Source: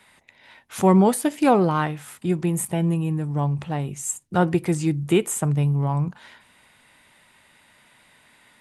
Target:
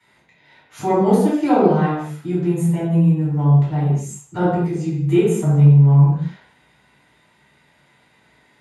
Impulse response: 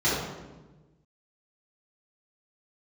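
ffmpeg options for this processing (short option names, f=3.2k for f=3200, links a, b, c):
-filter_complex "[0:a]asplit=3[a][b][c];[a]afade=t=out:st=4.49:d=0.02[d];[b]acompressor=threshold=-24dB:ratio=6,afade=t=in:st=4.49:d=0.02,afade=t=out:st=5:d=0.02[e];[c]afade=t=in:st=5:d=0.02[f];[d][e][f]amix=inputs=3:normalize=0[g];[1:a]atrim=start_sample=2205,afade=t=out:st=0.3:d=0.01,atrim=end_sample=13671[h];[g][h]afir=irnorm=-1:irlink=0,volume=-15dB"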